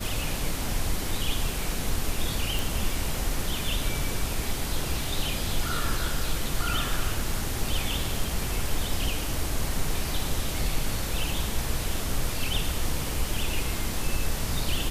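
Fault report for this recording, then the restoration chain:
0:02.59: click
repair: click removal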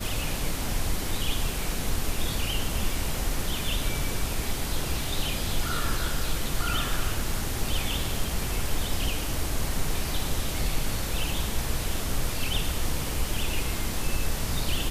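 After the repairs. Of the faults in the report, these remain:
none of them is left

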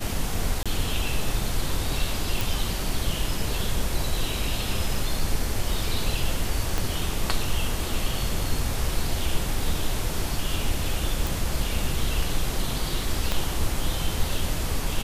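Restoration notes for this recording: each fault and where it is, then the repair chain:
0:00.63–0:00.66: drop-out 26 ms
0:02.41: click
0:06.78: click
0:11.27: click
0:13.32: click −10 dBFS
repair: click removal
repair the gap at 0:00.63, 26 ms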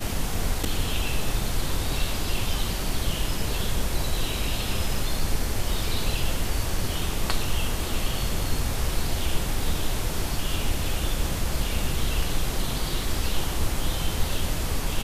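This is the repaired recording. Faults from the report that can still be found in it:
0:06.78: click
0:13.32: click

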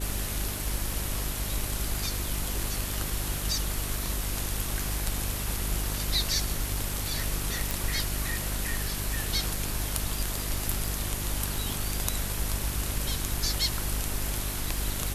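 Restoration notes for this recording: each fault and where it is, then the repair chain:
surface crackle 24 per second −34 dBFS
mains hum 50 Hz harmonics 8 −34 dBFS
0:07.71: click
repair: click removal
hum removal 50 Hz, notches 8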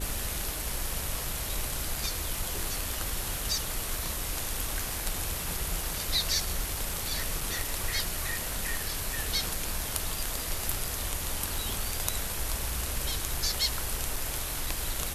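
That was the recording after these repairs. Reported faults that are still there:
none of them is left

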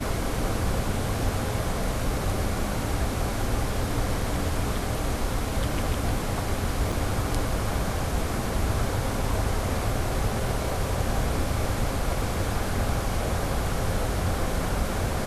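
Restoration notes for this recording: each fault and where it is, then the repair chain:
0:06.92: drop-out 4.5 ms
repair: repair the gap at 0:06.92, 4.5 ms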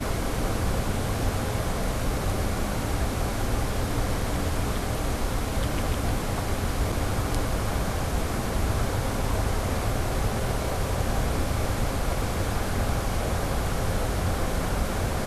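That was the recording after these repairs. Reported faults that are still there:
none of them is left

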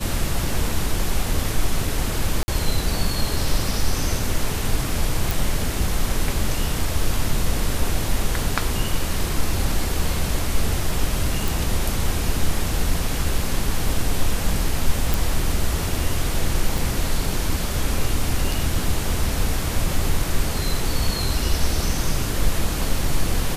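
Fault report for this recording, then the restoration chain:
0:02.43–0:02.48: drop-out 50 ms
0:05.31: click
0:11.48: click
0:15.14: click
0:16.78: click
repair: click removal
repair the gap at 0:02.43, 50 ms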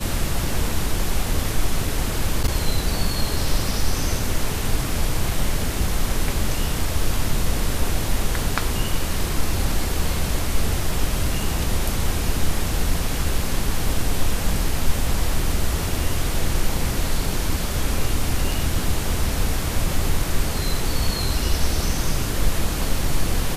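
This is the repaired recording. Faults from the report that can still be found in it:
none of them is left

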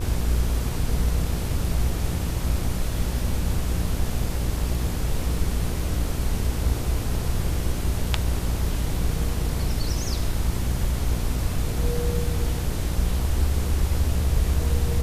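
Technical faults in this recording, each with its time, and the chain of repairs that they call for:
mains buzz 60 Hz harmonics 25 −28 dBFS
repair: hum removal 60 Hz, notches 25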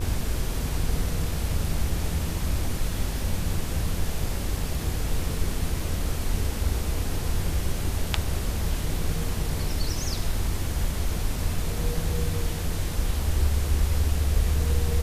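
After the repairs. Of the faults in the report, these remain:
none of them is left

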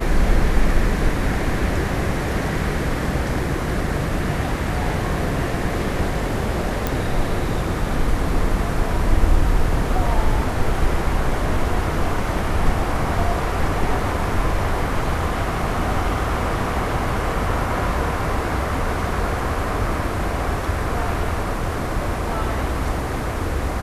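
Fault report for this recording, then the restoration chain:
0:06.87: click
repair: click removal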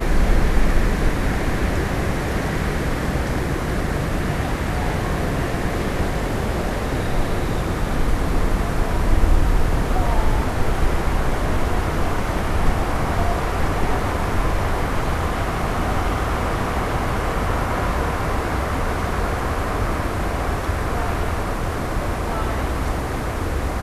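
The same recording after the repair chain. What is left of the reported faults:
none of them is left

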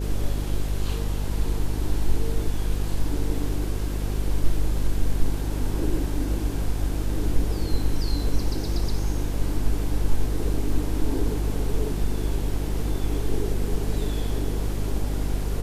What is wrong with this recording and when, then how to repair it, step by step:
mains buzz 50 Hz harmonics 10 −27 dBFS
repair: hum removal 50 Hz, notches 10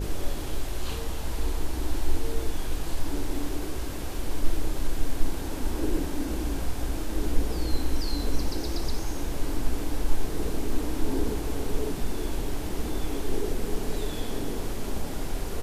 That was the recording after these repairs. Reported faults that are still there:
none of them is left

